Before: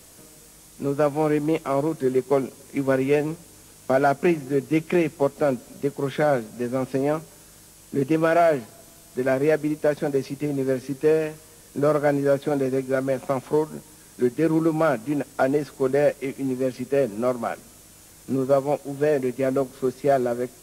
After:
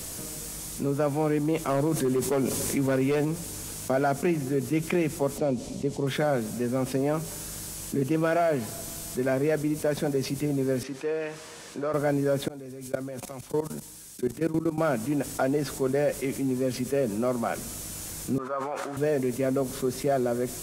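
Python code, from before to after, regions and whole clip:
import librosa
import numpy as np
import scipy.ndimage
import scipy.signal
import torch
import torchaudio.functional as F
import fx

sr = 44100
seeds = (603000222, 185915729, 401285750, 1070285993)

y = fx.chain(x, sr, fx.clip_hard(threshold_db=-16.0),
    fx.env_flatten(amount_pct=50), at=(1.68, 3.25))
y = fx.chain(y, sr, fx.lowpass(hz=6100.0, slope=12),
    fx.peak_eq(hz=1500.0, db=-11.5, octaves=0.83), at=(5.38, 6.07))
y = fx.chain(y, sr, fx.highpass(hz=1100.0, slope=6),
    fx.spacing_loss(db_at_10k=20), at=(10.83, 11.94))
y = fx.chain(y, sr, fx.level_steps(step_db=20),
    fx.band_widen(depth_pct=70), at=(12.48, 14.78))
y = fx.chain(y, sr, fx.bandpass_q(hz=1300.0, q=2.9),
    fx.sustainer(db_per_s=44.0), at=(18.38, 18.97))
y = fx.bass_treble(y, sr, bass_db=4, treble_db=4)
y = fx.env_flatten(y, sr, amount_pct=50)
y = F.gain(torch.from_numpy(y), -7.0).numpy()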